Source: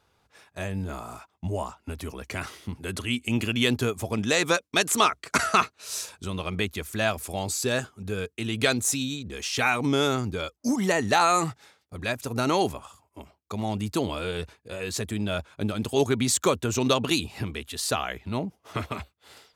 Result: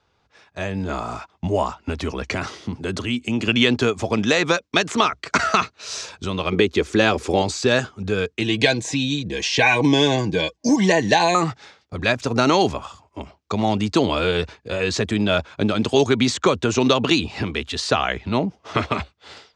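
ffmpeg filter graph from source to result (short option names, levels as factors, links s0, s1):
-filter_complex "[0:a]asettb=1/sr,asplit=3[s0][s1][s2];[s0]atrim=end=2.344[s3];[s1]atrim=start=2.34:end=3.48,asetpts=PTS-STARTPTS,afade=t=in:d=0.004:c=qsin,afade=t=out:st=1.136:d=0.004:c=qsin,highpass=95,equalizer=f=2300:t=o:w=1.8:g=-5.5,acompressor=threshold=0.0224:ratio=1.5:attack=3.2:release=140:knee=1:detection=peak[s4];[s2]atrim=start=3.476[s5];[s3][s4]acrossfade=d=0.004:c1=hsin:c2=qsin[s6];[s6][s5]acrossfade=d=0.004:c1=qsin:c2=hsin,asettb=1/sr,asplit=3[s7][s8][s9];[s7]atrim=end=6.524[s10];[s8]atrim=start=6.52:end=7.42,asetpts=PTS-STARTPTS,afade=t=in:d=0.004:c=qsin,afade=t=out:st=0.896:d=0.004:c=qsin,asuperstop=centerf=640:order=4:qfactor=7.7,equalizer=f=380:w=1.2:g=11[s11];[s9]atrim=start=7.416[s12];[s10][s11]acrossfade=d=0.004:c1=hsin:c2=qsin[s13];[s13][s12]acrossfade=d=0.004:c1=qsin:c2=hsin,asettb=1/sr,asplit=3[s14][s15][s16];[s14]atrim=end=8.414[s17];[s15]atrim=start=8.41:end=11.35,asetpts=PTS-STARTPTS,afade=t=in:d=0.004:c=qsin,afade=t=out:st=2.936:d=0.004:c=qsin,asuperstop=centerf=1300:order=20:qfactor=3.9,aecho=1:1:6.2:0.47,atrim=end_sample=129654[s18];[s16]atrim=start=11.346[s19];[s17][s18]acrossfade=d=0.004:c1=hsin:c2=qsin[s20];[s20][s19]acrossfade=d=0.004:c1=qsin:c2=hsin,acrossover=split=190|3200[s21][s22][s23];[s21]acompressor=threshold=0.0112:ratio=4[s24];[s22]acompressor=threshold=0.0631:ratio=4[s25];[s23]acompressor=threshold=0.02:ratio=4[s26];[s24][s25][s26]amix=inputs=3:normalize=0,lowpass=f=6300:w=0.5412,lowpass=f=6300:w=1.3066,dynaudnorm=f=460:g=3:m=3.16,volume=1.12"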